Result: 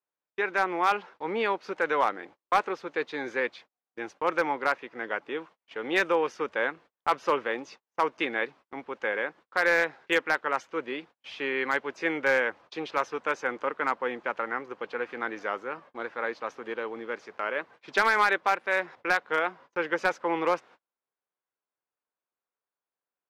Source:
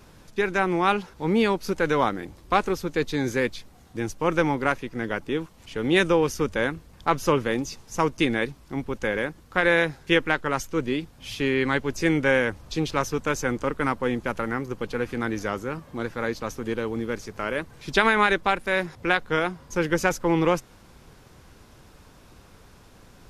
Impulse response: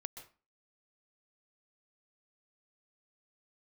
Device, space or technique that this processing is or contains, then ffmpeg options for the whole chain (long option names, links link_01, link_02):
walkie-talkie: -af "highpass=550,lowpass=2500,asoftclip=type=hard:threshold=-14.5dB,agate=range=-38dB:threshold=-48dB:ratio=16:detection=peak"